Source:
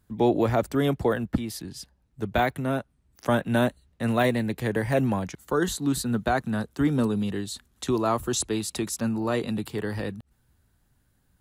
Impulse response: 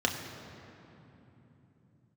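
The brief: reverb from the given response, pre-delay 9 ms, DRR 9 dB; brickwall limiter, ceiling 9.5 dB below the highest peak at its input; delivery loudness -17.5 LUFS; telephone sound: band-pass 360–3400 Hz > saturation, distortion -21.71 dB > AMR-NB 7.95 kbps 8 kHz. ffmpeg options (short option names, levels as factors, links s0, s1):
-filter_complex "[0:a]alimiter=limit=0.0944:level=0:latency=1,asplit=2[s0][s1];[1:a]atrim=start_sample=2205,adelay=9[s2];[s1][s2]afir=irnorm=-1:irlink=0,volume=0.119[s3];[s0][s3]amix=inputs=2:normalize=0,highpass=360,lowpass=3400,asoftclip=threshold=0.0794,volume=7.94" -ar 8000 -c:a libopencore_amrnb -b:a 7950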